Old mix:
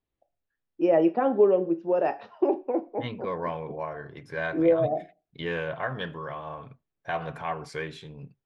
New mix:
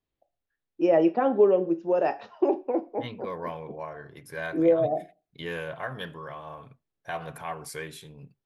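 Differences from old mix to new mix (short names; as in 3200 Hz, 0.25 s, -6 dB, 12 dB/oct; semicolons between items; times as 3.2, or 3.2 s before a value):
second voice -4.0 dB; master: remove air absorption 130 m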